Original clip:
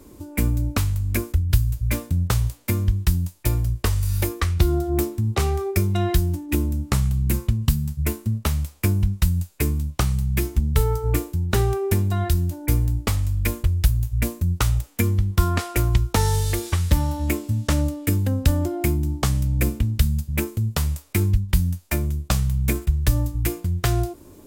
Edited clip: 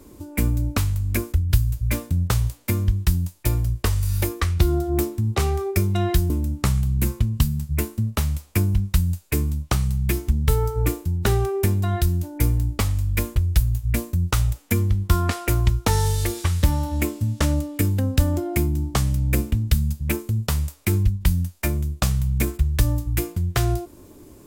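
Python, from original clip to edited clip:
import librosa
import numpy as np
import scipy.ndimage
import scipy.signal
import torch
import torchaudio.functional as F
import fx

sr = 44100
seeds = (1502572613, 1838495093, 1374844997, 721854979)

y = fx.edit(x, sr, fx.cut(start_s=6.3, length_s=0.28), tone=tone)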